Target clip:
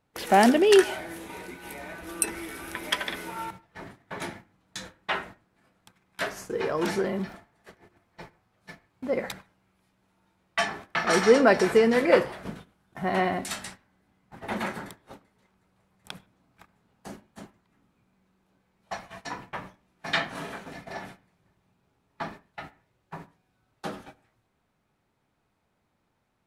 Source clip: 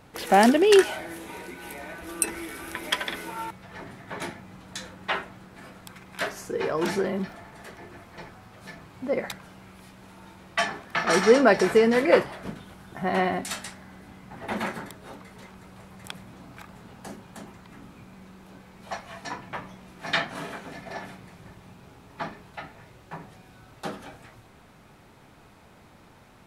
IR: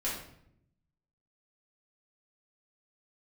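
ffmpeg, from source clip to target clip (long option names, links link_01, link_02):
-filter_complex "[0:a]agate=range=-20dB:threshold=-41dB:ratio=16:detection=peak,asplit=2[link_01][link_02];[link_02]lowpass=2700[link_03];[1:a]atrim=start_sample=2205,atrim=end_sample=3969,adelay=67[link_04];[link_03][link_04]afir=irnorm=-1:irlink=0,volume=-24.5dB[link_05];[link_01][link_05]amix=inputs=2:normalize=0,volume=-1dB"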